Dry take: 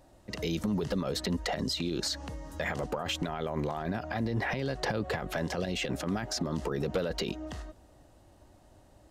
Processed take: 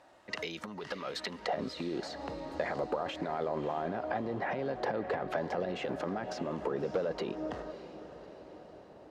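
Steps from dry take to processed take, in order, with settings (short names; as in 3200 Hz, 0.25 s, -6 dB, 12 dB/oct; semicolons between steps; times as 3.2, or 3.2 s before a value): compressor, threshold -34 dBFS, peak gain reduction 8 dB; band-pass 1600 Hz, Q 0.77, from 1.46 s 630 Hz; diffused feedback echo 0.606 s, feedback 54%, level -12.5 dB; gain +7 dB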